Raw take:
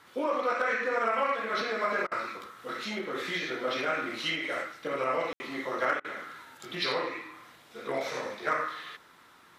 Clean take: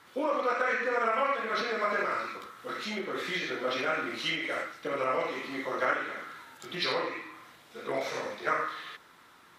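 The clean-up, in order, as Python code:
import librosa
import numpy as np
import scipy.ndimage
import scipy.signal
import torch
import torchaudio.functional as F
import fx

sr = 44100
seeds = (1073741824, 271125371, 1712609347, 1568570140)

y = fx.fix_declip(x, sr, threshold_db=-18.0)
y = fx.fix_ambience(y, sr, seeds[0], print_start_s=9.02, print_end_s=9.52, start_s=5.33, end_s=5.4)
y = fx.fix_interpolate(y, sr, at_s=(2.07, 6.0), length_ms=44.0)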